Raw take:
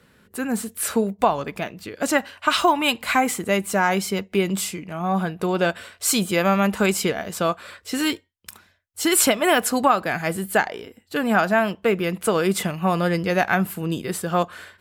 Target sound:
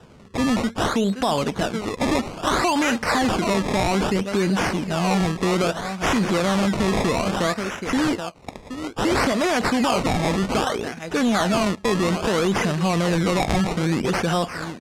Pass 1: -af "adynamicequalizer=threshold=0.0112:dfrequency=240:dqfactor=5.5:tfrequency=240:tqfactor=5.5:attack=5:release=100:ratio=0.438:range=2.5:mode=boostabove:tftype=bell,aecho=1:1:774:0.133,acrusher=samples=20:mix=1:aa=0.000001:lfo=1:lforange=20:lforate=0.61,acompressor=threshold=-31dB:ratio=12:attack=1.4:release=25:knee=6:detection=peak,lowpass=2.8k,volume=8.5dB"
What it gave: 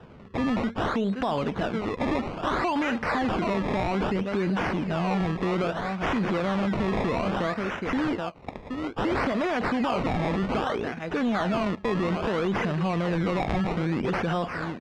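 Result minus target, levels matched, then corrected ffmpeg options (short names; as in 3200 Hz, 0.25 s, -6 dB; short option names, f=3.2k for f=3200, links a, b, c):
8000 Hz band -14.5 dB; compressor: peak gain reduction +5.5 dB
-af "adynamicequalizer=threshold=0.0112:dfrequency=240:dqfactor=5.5:tfrequency=240:tqfactor=5.5:attack=5:release=100:ratio=0.438:range=2.5:mode=boostabove:tftype=bell,aecho=1:1:774:0.133,acrusher=samples=20:mix=1:aa=0.000001:lfo=1:lforange=20:lforate=0.61,acompressor=threshold=-25dB:ratio=12:attack=1.4:release=25:knee=6:detection=peak,lowpass=8.2k,volume=8.5dB"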